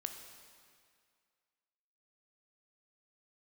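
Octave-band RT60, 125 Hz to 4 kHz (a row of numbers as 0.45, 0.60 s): 1.9, 2.0, 2.1, 2.1, 2.1, 1.9 s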